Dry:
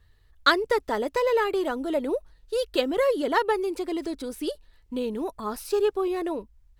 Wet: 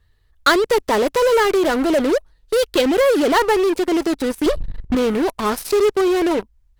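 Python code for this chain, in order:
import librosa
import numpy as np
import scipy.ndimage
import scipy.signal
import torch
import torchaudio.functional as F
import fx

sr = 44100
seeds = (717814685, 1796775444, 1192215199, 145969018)

p1 = fx.tilt_eq(x, sr, slope=-3.5, at=(4.46, 4.95))
p2 = fx.fuzz(p1, sr, gain_db=35.0, gate_db=-37.0)
y = p1 + (p2 * 10.0 ** (-4.0 / 20.0))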